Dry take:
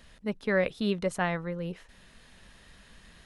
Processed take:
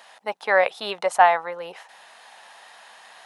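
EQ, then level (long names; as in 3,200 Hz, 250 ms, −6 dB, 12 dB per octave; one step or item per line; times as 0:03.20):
high-pass with resonance 790 Hz, resonance Q 4.9
+7.5 dB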